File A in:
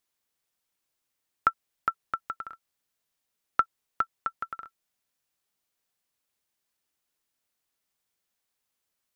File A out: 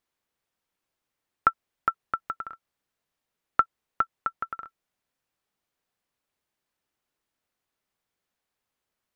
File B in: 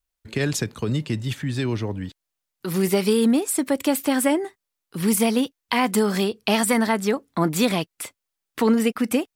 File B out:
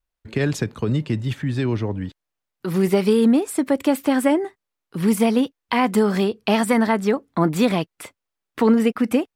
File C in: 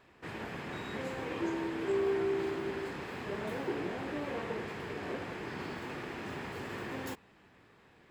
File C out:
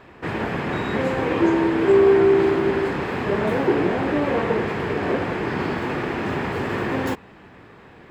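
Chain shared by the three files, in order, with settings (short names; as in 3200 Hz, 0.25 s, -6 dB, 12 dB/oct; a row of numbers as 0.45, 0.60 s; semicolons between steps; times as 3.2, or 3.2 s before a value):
high shelf 3400 Hz -11 dB; normalise peaks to -6 dBFS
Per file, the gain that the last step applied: +4.0, +3.0, +16.5 dB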